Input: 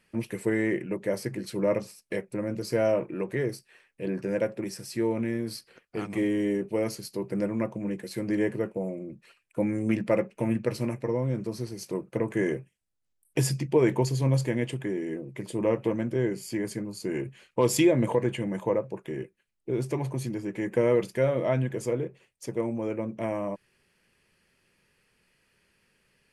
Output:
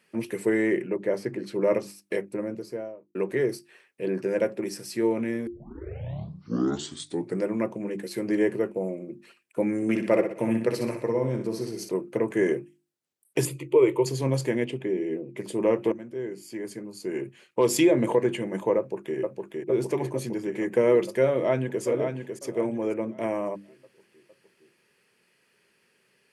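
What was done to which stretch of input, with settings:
0.87–1.61 LPF 2500 Hz 6 dB/oct
2.13–3.15 studio fade out
5.47 tape start 1.98 s
9.76–11.89 flutter echo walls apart 10.6 m, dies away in 0.5 s
13.45–14.06 fixed phaser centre 1100 Hz, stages 8
14.64–15.37 EQ curve 500 Hz 0 dB, 1600 Hz -8 dB, 2400 Hz +1 dB, 8300 Hz -11 dB
15.92–18.03 fade in, from -14 dB
18.77–19.17 echo throw 0.46 s, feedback 75%, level -3 dB
21.31–21.83 echo throw 0.55 s, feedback 30%, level -6.5 dB
whole clip: HPF 170 Hz 12 dB/oct; bell 390 Hz +5 dB 0.3 oct; notches 50/100/150/200/250/300/350 Hz; gain +2 dB

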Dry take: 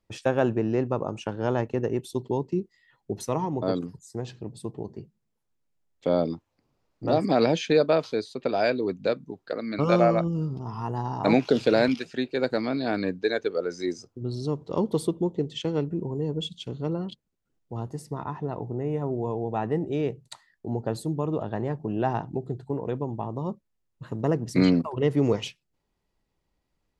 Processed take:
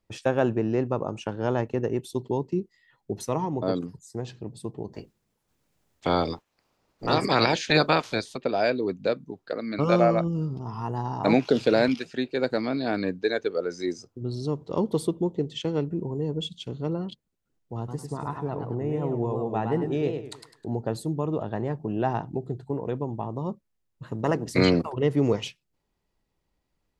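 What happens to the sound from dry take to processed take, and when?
4.92–8.36 spectral limiter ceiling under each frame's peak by 19 dB
17.77–20.75 warbling echo 0.105 s, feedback 34%, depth 155 cents, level -6 dB
24.23–24.92 spectral limiter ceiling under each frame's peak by 12 dB

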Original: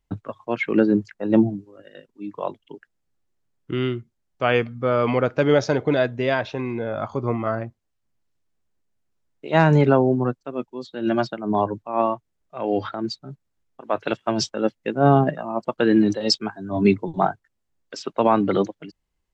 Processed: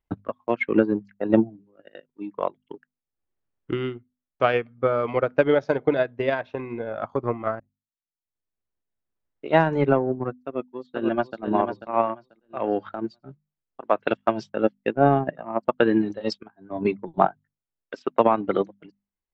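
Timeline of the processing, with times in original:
7.6–9.69 fade in
10.44–11.41 echo throw 0.49 s, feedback 30%, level -3.5 dB
16.43–17.24 fade in linear, from -12.5 dB
whole clip: tone controls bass -4 dB, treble -14 dB; notches 50/100/150/200/250 Hz; transient shaper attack +8 dB, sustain -9 dB; gain -4 dB

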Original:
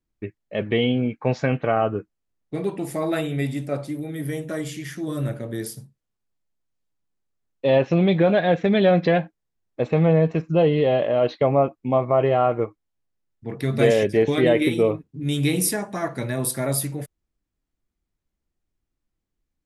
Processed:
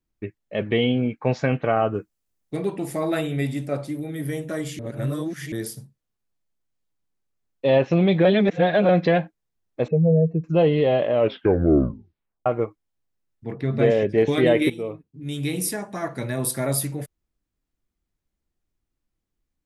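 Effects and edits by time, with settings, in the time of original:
1.94–2.57 high shelf 4700 Hz +10 dB
4.79–5.52 reverse
8.25–8.89 reverse
9.88–10.44 spectral contrast raised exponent 2.3
11.13 tape stop 1.33 s
13.53–14.18 tape spacing loss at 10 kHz 23 dB
14.7–16.55 fade in, from -12.5 dB

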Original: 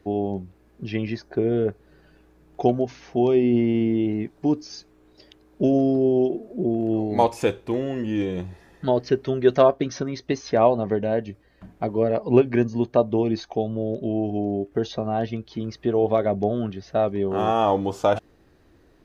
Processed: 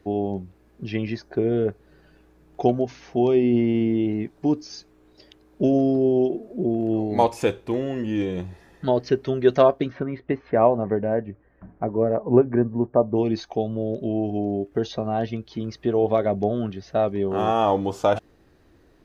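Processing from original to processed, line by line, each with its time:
9.89–13.15 LPF 2500 Hz -> 1300 Hz 24 dB/oct

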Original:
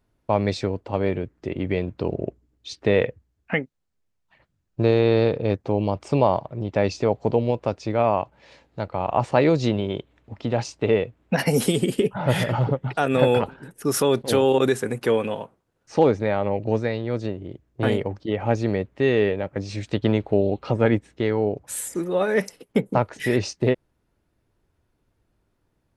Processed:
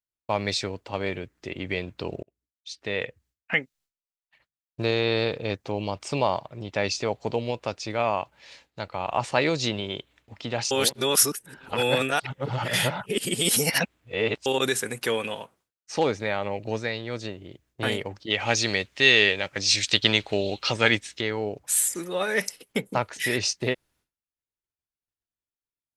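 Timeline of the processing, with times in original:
2.23–3.58 fade in
10.71–14.46 reverse
18.3–21.21 bell 4900 Hz +13.5 dB 2.8 oct
whole clip: expander -53 dBFS; tilt shelf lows -8.5 dB, about 1400 Hz

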